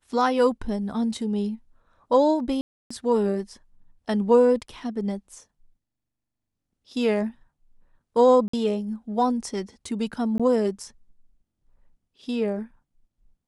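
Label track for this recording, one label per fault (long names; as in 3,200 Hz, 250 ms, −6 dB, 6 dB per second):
2.610000	2.900000	drop-out 295 ms
8.480000	8.530000	drop-out 54 ms
10.380000	10.400000	drop-out 16 ms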